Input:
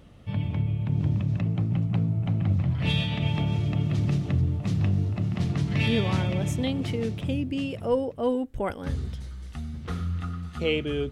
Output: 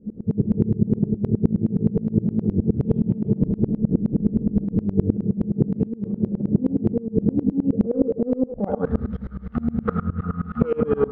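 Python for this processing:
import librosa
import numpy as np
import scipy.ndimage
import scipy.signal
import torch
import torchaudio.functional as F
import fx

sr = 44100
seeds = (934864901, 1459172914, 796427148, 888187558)

y = fx.octave_divider(x, sr, octaves=2, level_db=-5.0, at=(3.45, 4.85))
y = fx.notch(y, sr, hz=1000.0, q=5.3)
y = 10.0 ** (-26.5 / 20.0) * np.tanh(y / 10.0 ** (-26.5 / 20.0))
y = fx.peak_eq(y, sr, hz=210.0, db=9.5, octaves=0.24)
y = fx.small_body(y, sr, hz=(210.0, 450.0), ring_ms=65, db=15)
y = fx.filter_sweep_lowpass(y, sr, from_hz=350.0, to_hz=1300.0, start_s=8.28, end_s=8.89, q=3.7)
y = fx.echo_wet_bandpass(y, sr, ms=80, feedback_pct=45, hz=750.0, wet_db=-9.5)
y = fx.over_compress(y, sr, threshold_db=-21.0, ratio=-1.0)
y = fx.tremolo_decay(y, sr, direction='swelling', hz=9.6, depth_db=26)
y = y * librosa.db_to_amplitude(7.0)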